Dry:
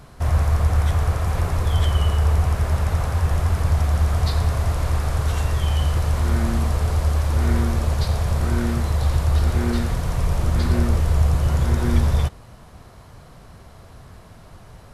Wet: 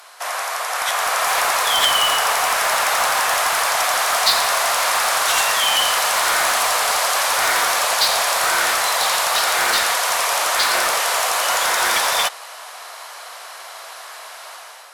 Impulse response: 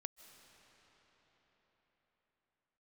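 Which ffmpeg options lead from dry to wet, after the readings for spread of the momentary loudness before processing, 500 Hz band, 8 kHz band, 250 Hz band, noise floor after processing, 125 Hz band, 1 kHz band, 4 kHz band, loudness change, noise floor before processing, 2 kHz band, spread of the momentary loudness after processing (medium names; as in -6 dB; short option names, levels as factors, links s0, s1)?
3 LU, +5.5 dB, +19.0 dB, -16.0 dB, -37 dBFS, under -30 dB, +13.5 dB, +18.0 dB, +4.5 dB, -45 dBFS, +16.5 dB, 19 LU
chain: -filter_complex "[0:a]highpass=f=620:w=0.5412,highpass=f=620:w=1.3066,tiltshelf=f=880:g=-5.5,dynaudnorm=f=660:g=3:m=2.51,asplit=2[s0][s1];[s1]aeval=exprs='(mod(7.08*val(0)+1,2)-1)/7.08':c=same,volume=0.316[s2];[s0][s2]amix=inputs=2:normalize=0,volume=1.58" -ar 48000 -c:a libopus -b:a 256k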